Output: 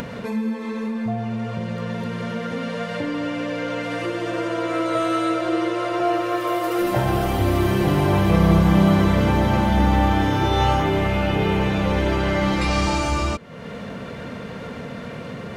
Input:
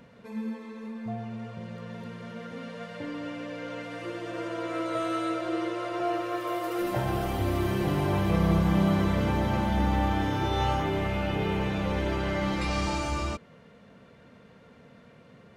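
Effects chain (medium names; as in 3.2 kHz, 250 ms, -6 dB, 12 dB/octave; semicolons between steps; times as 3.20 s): upward compressor, threshold -28 dBFS; trim +8 dB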